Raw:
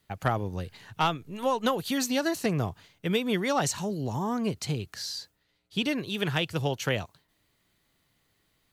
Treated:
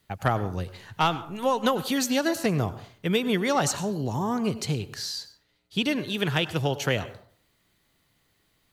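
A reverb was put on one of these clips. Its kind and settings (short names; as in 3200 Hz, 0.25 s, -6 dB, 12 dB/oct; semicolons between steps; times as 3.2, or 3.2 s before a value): plate-style reverb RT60 0.53 s, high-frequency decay 0.5×, pre-delay 85 ms, DRR 14.5 dB; gain +2.5 dB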